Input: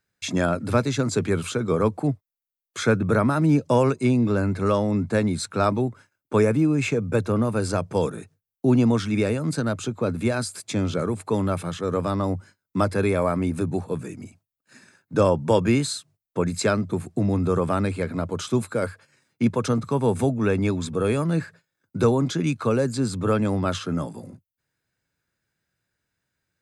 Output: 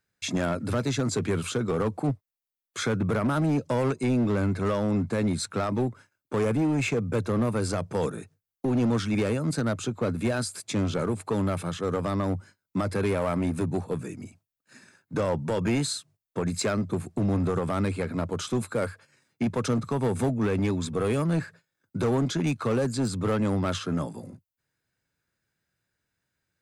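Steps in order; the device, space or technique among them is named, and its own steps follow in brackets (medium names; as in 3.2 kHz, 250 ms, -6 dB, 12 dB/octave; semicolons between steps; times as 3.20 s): limiter into clipper (peak limiter -14 dBFS, peak gain reduction 8 dB; hard clipper -19 dBFS, distortion -15 dB); trim -1.5 dB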